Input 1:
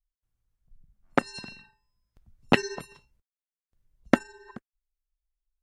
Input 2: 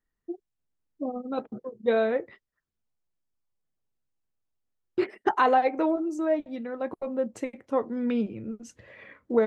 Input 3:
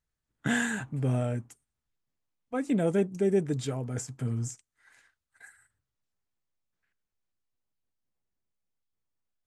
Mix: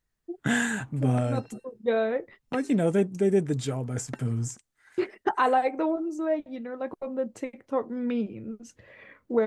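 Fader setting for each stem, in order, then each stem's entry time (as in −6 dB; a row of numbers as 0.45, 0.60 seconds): −17.5, −1.5, +2.5 decibels; 0.00, 0.00, 0.00 seconds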